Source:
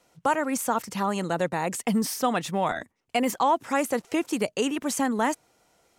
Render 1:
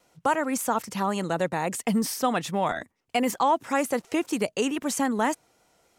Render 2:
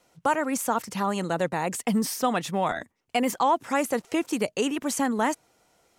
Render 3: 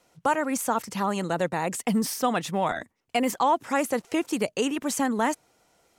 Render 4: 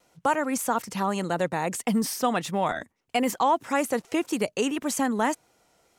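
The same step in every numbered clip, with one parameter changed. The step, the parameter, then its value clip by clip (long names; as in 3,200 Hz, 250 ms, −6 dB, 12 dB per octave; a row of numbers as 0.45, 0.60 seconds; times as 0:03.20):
pitch vibrato, speed: 3.6, 8, 15, 1.7 Hertz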